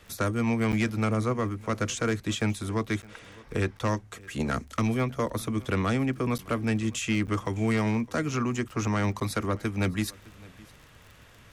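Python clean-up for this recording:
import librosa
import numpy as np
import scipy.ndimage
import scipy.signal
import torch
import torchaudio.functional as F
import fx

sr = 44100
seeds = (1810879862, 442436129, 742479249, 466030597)

y = fx.fix_declick_ar(x, sr, threshold=6.5)
y = fx.fix_interpolate(y, sr, at_s=(0.72, 3.02, 3.79, 6.38, 7.27, 9.2), length_ms=9.1)
y = fx.fix_echo_inverse(y, sr, delay_ms=611, level_db=-23.0)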